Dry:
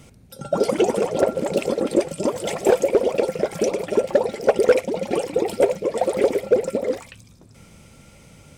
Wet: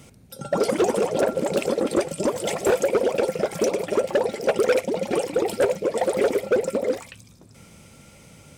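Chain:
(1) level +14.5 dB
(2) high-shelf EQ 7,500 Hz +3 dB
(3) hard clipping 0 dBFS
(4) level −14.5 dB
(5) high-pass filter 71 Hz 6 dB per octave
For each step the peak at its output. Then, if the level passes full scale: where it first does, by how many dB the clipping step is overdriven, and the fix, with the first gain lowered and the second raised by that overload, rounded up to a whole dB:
+7.0, +7.5, 0.0, −14.5, −12.0 dBFS
step 1, 7.5 dB
step 1 +6.5 dB, step 4 −6.5 dB

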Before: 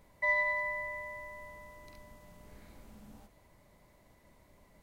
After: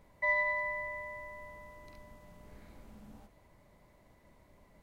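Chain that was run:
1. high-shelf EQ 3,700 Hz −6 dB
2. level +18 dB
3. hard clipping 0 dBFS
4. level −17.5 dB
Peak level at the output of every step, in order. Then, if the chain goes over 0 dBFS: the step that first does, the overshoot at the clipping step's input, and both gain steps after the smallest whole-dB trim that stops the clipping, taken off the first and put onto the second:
−20.5, −2.5, −2.5, −20.0 dBFS
no step passes full scale

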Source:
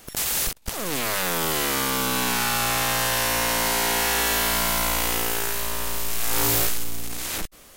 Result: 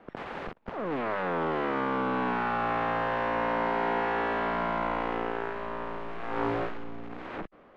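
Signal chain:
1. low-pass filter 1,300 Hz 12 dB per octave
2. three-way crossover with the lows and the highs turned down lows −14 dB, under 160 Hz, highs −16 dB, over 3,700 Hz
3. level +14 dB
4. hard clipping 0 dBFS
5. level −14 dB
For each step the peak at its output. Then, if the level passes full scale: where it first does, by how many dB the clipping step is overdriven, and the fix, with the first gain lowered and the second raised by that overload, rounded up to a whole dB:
−17.5, −17.0, −3.0, −3.0, −17.0 dBFS
no step passes full scale

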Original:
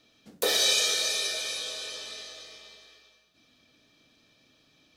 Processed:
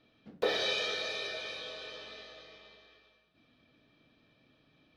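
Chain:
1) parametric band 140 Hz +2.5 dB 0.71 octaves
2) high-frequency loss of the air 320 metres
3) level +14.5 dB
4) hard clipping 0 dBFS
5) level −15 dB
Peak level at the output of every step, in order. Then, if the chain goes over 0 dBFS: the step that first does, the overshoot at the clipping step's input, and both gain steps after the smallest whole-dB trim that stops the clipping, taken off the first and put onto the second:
−14.0, −16.0, −1.5, −1.5, −16.5 dBFS
no step passes full scale

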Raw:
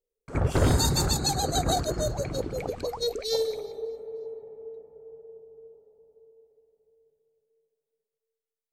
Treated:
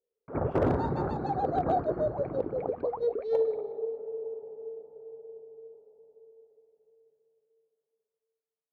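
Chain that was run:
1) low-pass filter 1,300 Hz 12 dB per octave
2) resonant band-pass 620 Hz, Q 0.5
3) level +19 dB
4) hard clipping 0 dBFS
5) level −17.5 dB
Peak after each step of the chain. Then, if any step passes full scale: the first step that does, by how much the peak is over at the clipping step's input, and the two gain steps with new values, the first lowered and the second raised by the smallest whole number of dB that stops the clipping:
−12.0, −14.5, +4.5, 0.0, −17.5 dBFS
step 3, 4.5 dB
step 3 +14 dB, step 5 −12.5 dB

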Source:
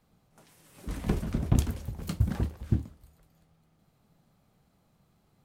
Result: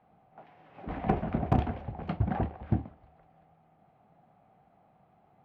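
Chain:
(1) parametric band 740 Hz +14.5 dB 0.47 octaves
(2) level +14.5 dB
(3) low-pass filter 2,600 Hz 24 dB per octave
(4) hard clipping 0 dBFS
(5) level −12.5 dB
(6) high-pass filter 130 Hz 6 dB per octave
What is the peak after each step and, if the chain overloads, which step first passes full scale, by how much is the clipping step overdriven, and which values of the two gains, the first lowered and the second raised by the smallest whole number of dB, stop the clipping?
−10.0, +4.5, +4.5, 0.0, −12.5, −10.5 dBFS
step 2, 4.5 dB
step 2 +9.5 dB, step 5 −7.5 dB

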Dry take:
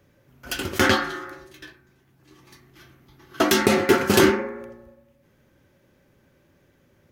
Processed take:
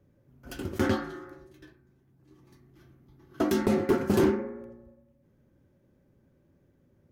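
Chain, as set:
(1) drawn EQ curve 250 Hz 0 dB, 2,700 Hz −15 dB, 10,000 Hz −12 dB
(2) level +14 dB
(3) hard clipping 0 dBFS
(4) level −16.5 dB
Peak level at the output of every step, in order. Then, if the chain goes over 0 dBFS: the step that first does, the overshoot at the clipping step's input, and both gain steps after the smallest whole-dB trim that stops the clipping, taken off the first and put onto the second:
−5.0, +9.0, 0.0, −16.5 dBFS
step 2, 9.0 dB
step 2 +5 dB, step 4 −7.5 dB

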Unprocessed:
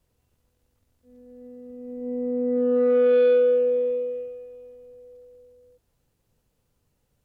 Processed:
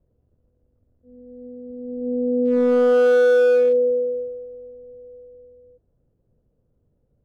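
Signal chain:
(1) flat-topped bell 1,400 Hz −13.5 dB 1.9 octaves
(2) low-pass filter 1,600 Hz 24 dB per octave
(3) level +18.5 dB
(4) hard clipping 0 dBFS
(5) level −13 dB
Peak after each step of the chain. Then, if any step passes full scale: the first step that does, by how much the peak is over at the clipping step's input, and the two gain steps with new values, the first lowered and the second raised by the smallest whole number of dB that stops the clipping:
−13.0, −13.0, +5.5, 0.0, −13.0 dBFS
step 3, 5.5 dB
step 3 +12.5 dB, step 5 −7 dB

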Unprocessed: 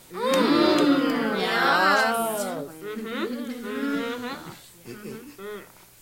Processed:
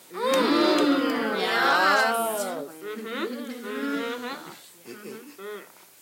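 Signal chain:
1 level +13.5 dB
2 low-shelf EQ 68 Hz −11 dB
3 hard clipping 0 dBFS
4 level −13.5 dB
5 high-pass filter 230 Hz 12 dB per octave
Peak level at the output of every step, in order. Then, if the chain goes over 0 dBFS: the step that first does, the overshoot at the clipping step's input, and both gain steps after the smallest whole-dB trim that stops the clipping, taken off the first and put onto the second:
+6.0, +5.5, 0.0, −13.5, −10.0 dBFS
step 1, 5.5 dB
step 1 +7.5 dB, step 4 −7.5 dB

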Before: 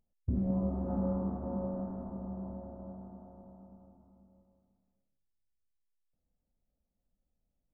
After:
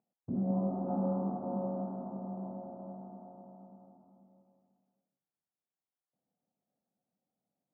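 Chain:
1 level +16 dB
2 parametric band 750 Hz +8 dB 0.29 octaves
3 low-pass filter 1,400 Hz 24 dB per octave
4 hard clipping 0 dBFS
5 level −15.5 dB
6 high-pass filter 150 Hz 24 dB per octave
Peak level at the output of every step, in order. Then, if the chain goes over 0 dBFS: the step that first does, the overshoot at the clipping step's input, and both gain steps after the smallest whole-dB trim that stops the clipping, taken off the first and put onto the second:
−5.5, −5.5, −5.5, −5.5, −21.0, −21.0 dBFS
no step passes full scale

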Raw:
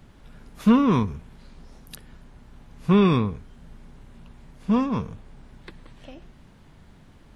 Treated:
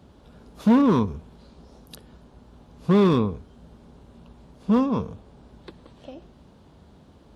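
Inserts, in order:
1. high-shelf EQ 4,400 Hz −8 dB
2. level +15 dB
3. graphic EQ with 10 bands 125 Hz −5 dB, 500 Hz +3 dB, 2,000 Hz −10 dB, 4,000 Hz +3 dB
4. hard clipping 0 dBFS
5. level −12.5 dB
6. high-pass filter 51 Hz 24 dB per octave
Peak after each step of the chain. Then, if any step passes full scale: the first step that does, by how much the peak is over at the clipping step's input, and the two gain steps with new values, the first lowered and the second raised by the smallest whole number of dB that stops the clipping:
−6.5, +8.5, +8.0, 0.0, −12.5, −8.5 dBFS
step 2, 8.0 dB
step 2 +7 dB, step 5 −4.5 dB

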